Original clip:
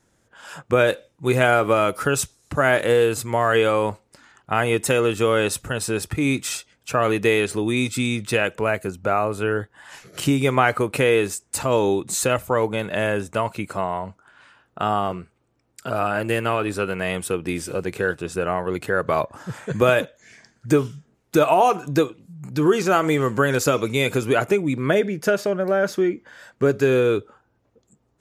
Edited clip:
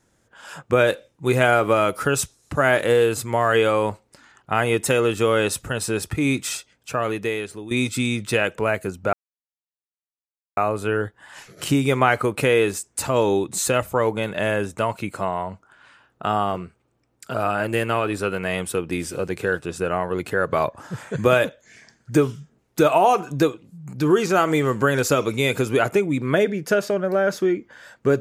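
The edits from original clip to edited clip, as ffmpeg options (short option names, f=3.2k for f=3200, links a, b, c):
-filter_complex "[0:a]asplit=3[a][b][c];[a]atrim=end=7.71,asetpts=PTS-STARTPTS,afade=t=out:st=6.46:d=1.25:silence=0.199526[d];[b]atrim=start=7.71:end=9.13,asetpts=PTS-STARTPTS,afade=t=in:d=0.004:c=hsin:silence=0.199526,afade=t=out:st=1.416:d=0.004:c=hsin,apad=pad_dur=1.44[e];[c]atrim=start=9.13,asetpts=PTS-STARTPTS,afade=t=in:d=0.004:c=hsin[f];[d][e][f]concat=n=3:v=0:a=1"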